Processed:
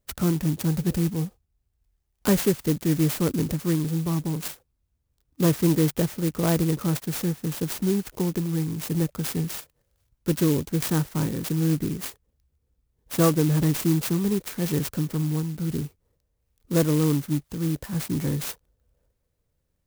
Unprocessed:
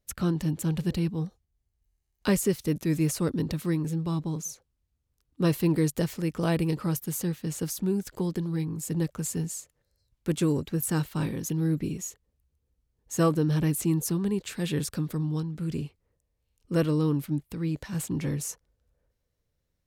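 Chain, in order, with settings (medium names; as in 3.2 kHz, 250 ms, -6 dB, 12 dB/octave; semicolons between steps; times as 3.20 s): sampling jitter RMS 0.095 ms; trim +3.5 dB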